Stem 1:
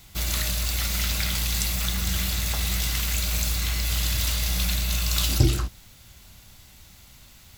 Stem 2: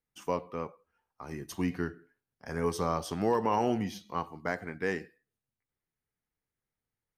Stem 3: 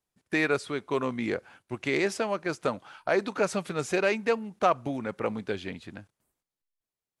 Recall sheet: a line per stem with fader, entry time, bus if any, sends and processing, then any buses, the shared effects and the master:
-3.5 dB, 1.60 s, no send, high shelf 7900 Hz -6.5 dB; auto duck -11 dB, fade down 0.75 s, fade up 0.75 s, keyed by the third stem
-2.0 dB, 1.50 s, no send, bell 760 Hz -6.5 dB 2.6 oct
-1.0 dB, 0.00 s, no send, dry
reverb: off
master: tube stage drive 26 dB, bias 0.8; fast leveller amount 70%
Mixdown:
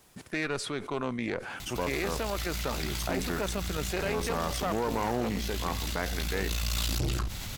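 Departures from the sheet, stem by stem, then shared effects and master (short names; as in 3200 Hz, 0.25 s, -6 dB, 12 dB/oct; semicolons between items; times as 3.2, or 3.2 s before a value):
stem 2: missing bell 760 Hz -6.5 dB 2.6 oct; stem 3 -1.0 dB -> -8.5 dB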